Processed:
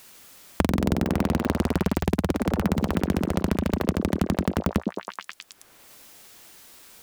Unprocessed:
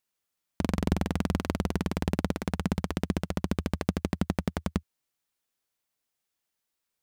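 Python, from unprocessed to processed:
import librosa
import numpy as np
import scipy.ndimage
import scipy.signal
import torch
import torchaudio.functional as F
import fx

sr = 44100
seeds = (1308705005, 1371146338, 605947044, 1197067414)

y = fx.tracing_dist(x, sr, depth_ms=0.44)
y = fx.sample_gate(y, sr, floor_db=-51.0, at=(2.69, 3.56))
y = fx.echo_stepped(y, sr, ms=107, hz=290.0, octaves=0.7, feedback_pct=70, wet_db=-1)
y = fx.band_squash(y, sr, depth_pct=100)
y = F.gain(torch.from_numpy(y), 4.0).numpy()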